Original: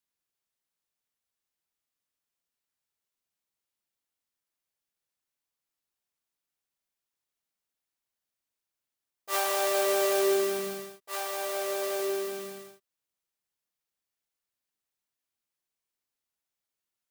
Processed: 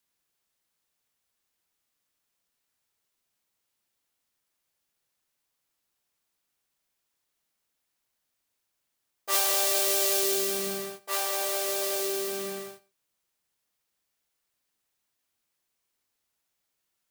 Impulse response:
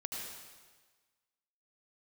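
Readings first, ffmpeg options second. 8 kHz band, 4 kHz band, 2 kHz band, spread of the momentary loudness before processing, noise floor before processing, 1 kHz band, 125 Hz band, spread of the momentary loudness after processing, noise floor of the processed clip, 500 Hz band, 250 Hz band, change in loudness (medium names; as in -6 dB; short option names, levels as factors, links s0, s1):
+7.5 dB, +6.0 dB, 0.0 dB, 14 LU, under -85 dBFS, -1.5 dB, no reading, 13 LU, -81 dBFS, -3.5 dB, -2.5 dB, +3.0 dB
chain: -filter_complex "[0:a]acrossover=split=160|3000[s0][s1][s2];[s1]acompressor=threshold=0.0112:ratio=6[s3];[s0][s3][s2]amix=inputs=3:normalize=0,asplit=2[s4][s5];[1:a]atrim=start_sample=2205,atrim=end_sample=6174[s6];[s5][s6]afir=irnorm=-1:irlink=0,volume=0.15[s7];[s4][s7]amix=inputs=2:normalize=0,volume=2.24"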